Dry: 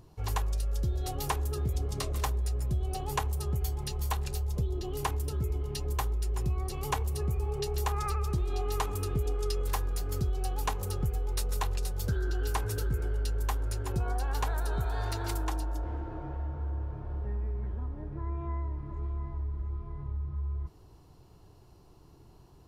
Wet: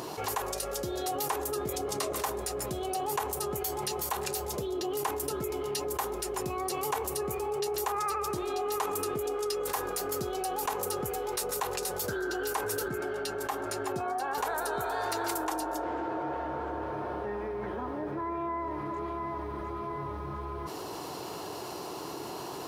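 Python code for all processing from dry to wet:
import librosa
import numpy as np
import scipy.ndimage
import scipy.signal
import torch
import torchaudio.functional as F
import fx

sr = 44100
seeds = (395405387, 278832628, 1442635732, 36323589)

y = fx.chain(x, sr, fx.highpass(hz=74.0, slope=12),
    fx.high_shelf(hz=5400.0, db=-8.0),
    fx.notch_comb(f0_hz=490.0), at=(12.88, 14.38))
y = scipy.signal.sosfilt(scipy.signal.butter(2, 390.0, 'highpass', fs=sr, output='sos'), y)
y = fx.dynamic_eq(y, sr, hz=3500.0, q=0.76, threshold_db=-54.0, ratio=4.0, max_db=-5)
y = fx.env_flatten(y, sr, amount_pct=70)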